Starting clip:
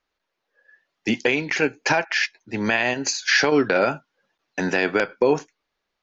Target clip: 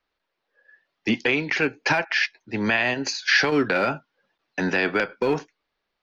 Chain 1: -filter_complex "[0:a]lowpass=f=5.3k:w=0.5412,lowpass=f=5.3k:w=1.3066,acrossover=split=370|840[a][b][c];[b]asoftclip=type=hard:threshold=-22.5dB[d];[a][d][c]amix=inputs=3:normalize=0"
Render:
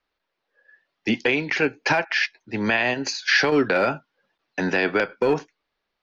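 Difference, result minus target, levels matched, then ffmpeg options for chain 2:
hard clip: distortion -6 dB
-filter_complex "[0:a]lowpass=f=5.3k:w=0.5412,lowpass=f=5.3k:w=1.3066,acrossover=split=370|840[a][b][c];[b]asoftclip=type=hard:threshold=-29.5dB[d];[a][d][c]amix=inputs=3:normalize=0"

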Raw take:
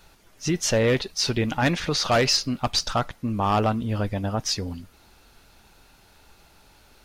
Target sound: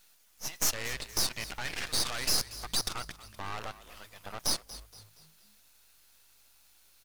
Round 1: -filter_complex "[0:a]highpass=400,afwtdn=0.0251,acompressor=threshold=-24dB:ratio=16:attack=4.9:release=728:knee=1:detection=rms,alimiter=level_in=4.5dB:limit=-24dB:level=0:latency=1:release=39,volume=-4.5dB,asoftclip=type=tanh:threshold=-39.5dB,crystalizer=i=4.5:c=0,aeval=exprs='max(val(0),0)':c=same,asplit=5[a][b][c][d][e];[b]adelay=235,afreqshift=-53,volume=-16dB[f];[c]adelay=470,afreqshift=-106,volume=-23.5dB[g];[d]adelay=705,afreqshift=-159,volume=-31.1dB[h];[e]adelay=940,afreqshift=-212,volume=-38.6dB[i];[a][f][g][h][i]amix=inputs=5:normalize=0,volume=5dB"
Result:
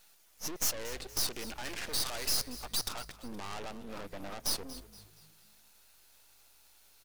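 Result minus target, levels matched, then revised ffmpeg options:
soft clip: distortion +7 dB; 500 Hz band +4.0 dB
-filter_complex "[0:a]highpass=1.1k,afwtdn=0.0251,acompressor=threshold=-24dB:ratio=16:attack=4.9:release=728:knee=1:detection=rms,alimiter=level_in=4.5dB:limit=-24dB:level=0:latency=1:release=39,volume=-4.5dB,asoftclip=type=tanh:threshold=-33dB,crystalizer=i=4.5:c=0,aeval=exprs='max(val(0),0)':c=same,asplit=5[a][b][c][d][e];[b]adelay=235,afreqshift=-53,volume=-16dB[f];[c]adelay=470,afreqshift=-106,volume=-23.5dB[g];[d]adelay=705,afreqshift=-159,volume=-31.1dB[h];[e]adelay=940,afreqshift=-212,volume=-38.6dB[i];[a][f][g][h][i]amix=inputs=5:normalize=0,volume=5dB"

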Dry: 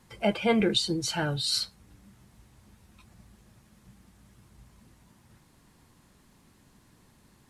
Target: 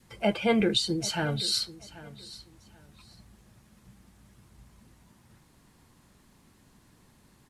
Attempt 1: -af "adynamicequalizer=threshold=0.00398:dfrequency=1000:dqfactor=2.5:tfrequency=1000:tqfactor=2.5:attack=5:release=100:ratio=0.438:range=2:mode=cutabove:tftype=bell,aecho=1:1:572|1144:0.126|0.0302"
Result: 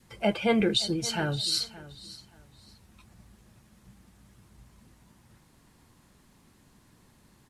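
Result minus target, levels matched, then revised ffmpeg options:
echo 0.212 s early
-af "adynamicequalizer=threshold=0.00398:dfrequency=1000:dqfactor=2.5:tfrequency=1000:tqfactor=2.5:attack=5:release=100:ratio=0.438:range=2:mode=cutabove:tftype=bell,aecho=1:1:784|1568:0.126|0.0302"

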